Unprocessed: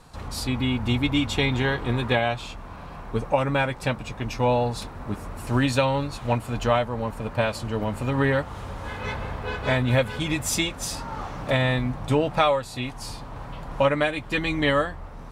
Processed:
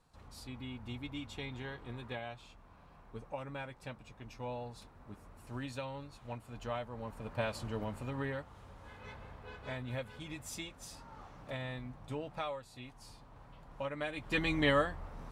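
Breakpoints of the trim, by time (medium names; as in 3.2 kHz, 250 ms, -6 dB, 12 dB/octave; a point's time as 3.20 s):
6.43 s -20 dB
7.63 s -10 dB
8.53 s -19 dB
13.90 s -19 dB
14.36 s -7 dB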